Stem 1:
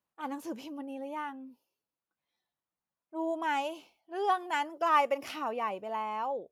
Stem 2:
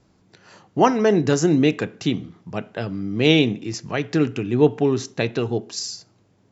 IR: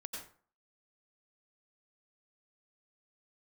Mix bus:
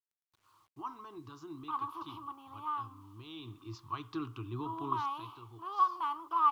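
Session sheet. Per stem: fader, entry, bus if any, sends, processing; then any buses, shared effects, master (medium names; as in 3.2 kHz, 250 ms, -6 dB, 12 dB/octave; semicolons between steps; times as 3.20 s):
-8.0 dB, 1.50 s, no send, spectral levelling over time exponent 0.6
3.34 s -19 dB -> 3.74 s -10 dB -> 4.86 s -10 dB -> 5.36 s -22 dB, 0.00 s, no send, peak limiter -10.5 dBFS, peak gain reduction 8 dB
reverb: none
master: FFT filter 110 Hz 0 dB, 190 Hz -24 dB, 330 Hz -4 dB, 520 Hz -28 dB, 740 Hz -14 dB, 1.1 kHz +13 dB, 1.8 kHz -20 dB, 3.5 kHz -1 dB, 7.4 kHz -22 dB, 11 kHz -6 dB; word length cut 12-bit, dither none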